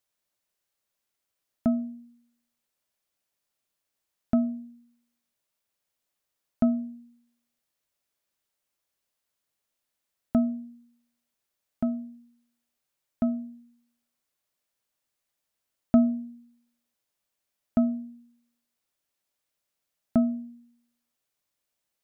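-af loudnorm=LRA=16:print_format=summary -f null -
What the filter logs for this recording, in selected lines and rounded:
Input Integrated:    -28.4 LUFS
Input True Peak:      -8.7 dBTP
Input LRA:             5.1 LU
Input Threshold:     -40.4 LUFS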